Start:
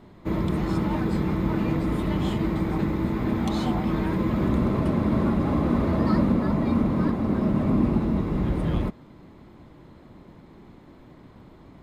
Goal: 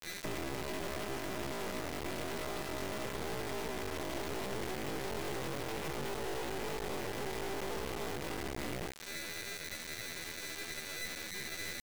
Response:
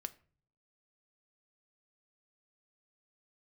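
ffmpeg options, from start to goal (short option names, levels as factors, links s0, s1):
-filter_complex "[1:a]atrim=start_sample=2205,afade=t=out:st=0.15:d=0.01,atrim=end_sample=7056[s0];[0:a][s0]afir=irnorm=-1:irlink=0,afreqshift=-13,aeval=exprs='val(0)+0.0178*sin(2*PI*1000*n/s)':c=same,aresample=16000,asoftclip=type=hard:threshold=0.0596,aresample=44100,asetrate=88200,aresample=44100,atempo=0.5,equalizer=f=970:w=4.8:g=-12,acrossover=split=130|970|6200[s1][s2][s3][s4];[s1]acompressor=threshold=0.00794:ratio=4[s5];[s2]acompressor=threshold=0.0316:ratio=4[s6];[s3]acompressor=threshold=0.00891:ratio=4[s7];[s4]acompressor=threshold=0.00112:ratio=4[s8];[s5][s6][s7][s8]amix=inputs=4:normalize=0,adynamicequalizer=threshold=0.00316:dfrequency=1400:dqfactor=1:tfrequency=1400:tqfactor=1:attack=5:release=100:ratio=0.375:range=2.5:mode=cutabove:tftype=bell,acompressor=threshold=0.0112:ratio=4,afftfilt=real='re*gte(hypot(re,im),0.00282)':imag='im*gte(hypot(re,im),0.00282)':win_size=1024:overlap=0.75,acrusher=bits=4:dc=4:mix=0:aa=0.000001,volume=1.58"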